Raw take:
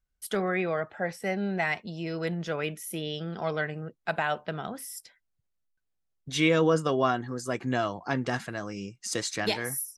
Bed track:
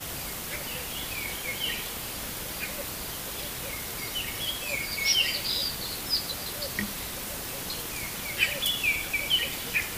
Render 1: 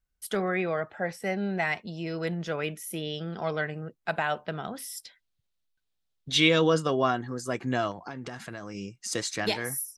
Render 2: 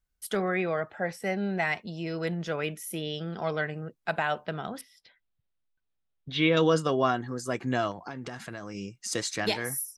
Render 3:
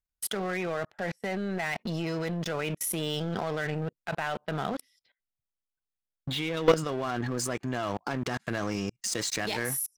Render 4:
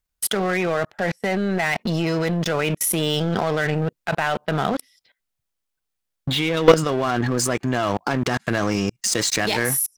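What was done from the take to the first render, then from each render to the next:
4.76–6.86 s: peaking EQ 3.7 kHz +9.5 dB 0.95 oct; 7.91–8.75 s: compression 16:1, threshold -33 dBFS
4.81–6.57 s: distance through air 330 m
level held to a coarse grid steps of 21 dB; waveshaping leveller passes 3
trim +9.5 dB; peak limiter -3 dBFS, peak gain reduction 1 dB

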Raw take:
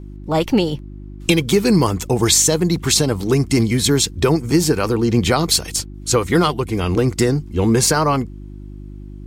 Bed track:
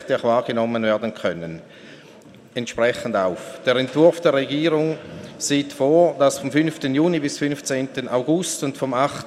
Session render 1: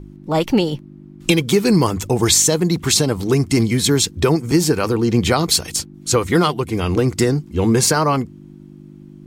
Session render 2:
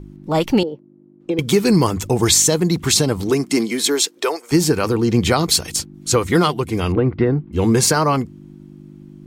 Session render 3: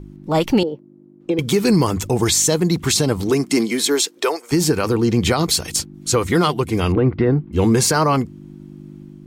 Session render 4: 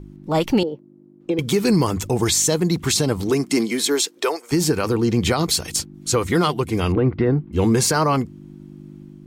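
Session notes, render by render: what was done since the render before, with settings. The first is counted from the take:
de-hum 50 Hz, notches 2
0.63–1.39 s: band-pass filter 460 Hz, Q 2; 3.29–4.51 s: high-pass 160 Hz -> 570 Hz 24 dB/octave; 6.92–7.53 s: Gaussian low-pass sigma 3.5 samples
level rider gain up to 3 dB; peak limiter -7 dBFS, peak gain reduction 5 dB
trim -2 dB

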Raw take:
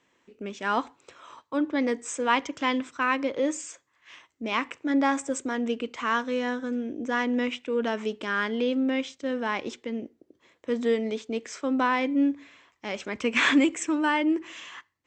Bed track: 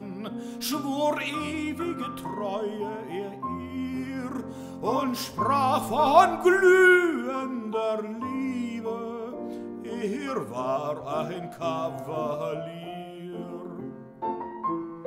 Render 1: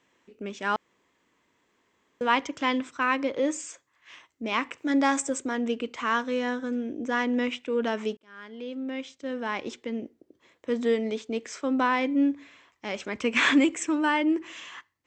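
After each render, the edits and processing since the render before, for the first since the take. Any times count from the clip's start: 0.76–2.21 s: room tone; 4.78–5.30 s: treble shelf 4.5 kHz +10 dB; 8.17–9.87 s: fade in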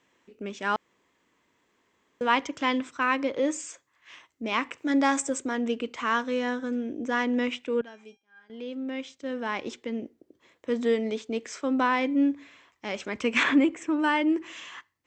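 7.81–8.50 s: feedback comb 800 Hz, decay 0.28 s, mix 90%; 13.43–13.99 s: low-pass 1.6 kHz 6 dB/octave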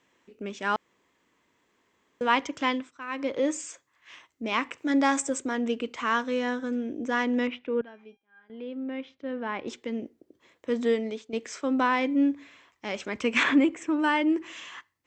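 2.67–3.31 s: dip -13 dB, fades 0.24 s; 7.47–9.68 s: distance through air 310 m; 10.90–11.33 s: fade out, to -10 dB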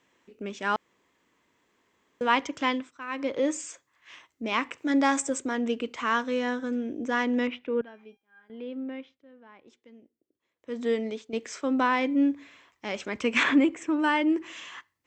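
8.79–11.01 s: dip -20 dB, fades 0.46 s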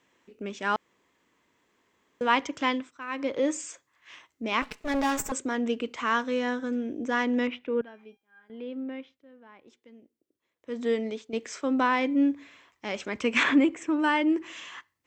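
4.62–5.32 s: comb filter that takes the minimum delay 4.7 ms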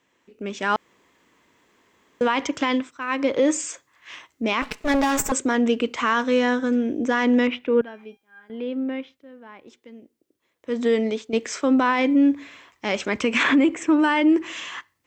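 peak limiter -19.5 dBFS, peak gain reduction 10.5 dB; level rider gain up to 8.5 dB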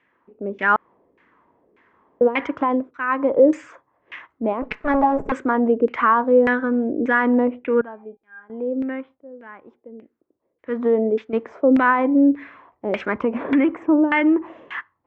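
LFO low-pass saw down 1.7 Hz 430–2200 Hz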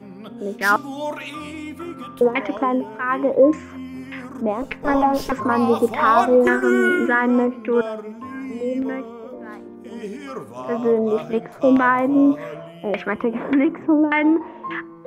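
add bed track -2 dB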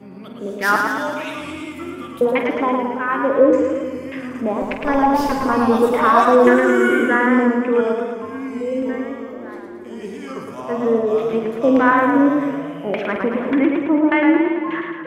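on a send: flutter echo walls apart 8.3 m, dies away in 0.32 s; on the sum: modulated delay 111 ms, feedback 63%, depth 83 cents, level -4.5 dB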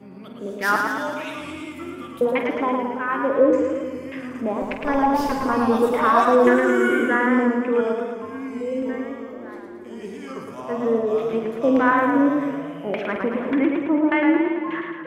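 trim -3.5 dB

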